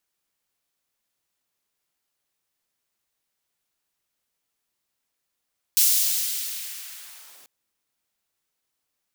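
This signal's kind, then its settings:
filter sweep on noise white, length 1.69 s highpass, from 5,000 Hz, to 120 Hz, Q 0.77, linear, gain ramp −35.5 dB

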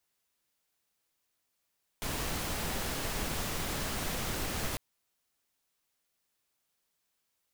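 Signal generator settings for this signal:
noise pink, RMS −34.5 dBFS 2.75 s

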